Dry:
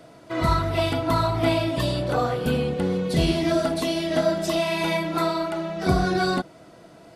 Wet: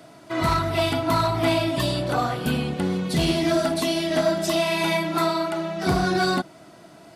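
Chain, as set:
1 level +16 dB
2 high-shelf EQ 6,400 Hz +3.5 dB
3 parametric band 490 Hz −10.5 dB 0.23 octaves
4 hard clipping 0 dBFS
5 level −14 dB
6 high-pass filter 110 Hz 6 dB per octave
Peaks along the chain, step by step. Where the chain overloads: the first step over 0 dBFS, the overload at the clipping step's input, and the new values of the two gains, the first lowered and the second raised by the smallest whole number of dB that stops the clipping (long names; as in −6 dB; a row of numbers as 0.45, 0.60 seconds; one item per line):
+8.0, +8.0, +8.0, 0.0, −14.0, −11.0 dBFS
step 1, 8.0 dB
step 1 +8 dB, step 5 −6 dB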